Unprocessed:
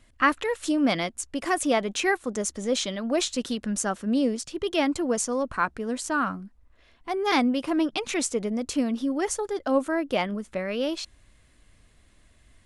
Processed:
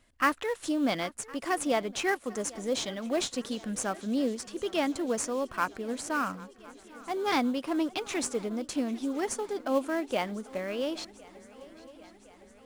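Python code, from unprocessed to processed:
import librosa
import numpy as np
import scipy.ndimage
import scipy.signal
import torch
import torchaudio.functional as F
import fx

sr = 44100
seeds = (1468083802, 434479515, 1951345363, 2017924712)

p1 = fx.low_shelf(x, sr, hz=170.0, db=-7.5)
p2 = fx.sample_hold(p1, sr, seeds[0], rate_hz=3800.0, jitter_pct=20)
p3 = p1 + F.gain(torch.from_numpy(p2), -12.0).numpy()
p4 = fx.echo_swing(p3, sr, ms=1061, ratio=3, feedback_pct=59, wet_db=-21)
y = F.gain(torch.from_numpy(p4), -5.0).numpy()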